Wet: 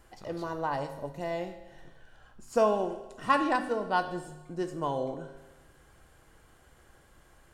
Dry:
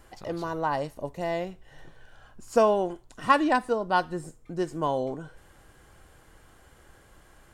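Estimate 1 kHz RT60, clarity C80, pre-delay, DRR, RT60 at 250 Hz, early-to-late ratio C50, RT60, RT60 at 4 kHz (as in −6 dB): 1.1 s, 11.5 dB, 7 ms, 7.0 dB, 1.1 s, 10.0 dB, 1.1 s, 1.1 s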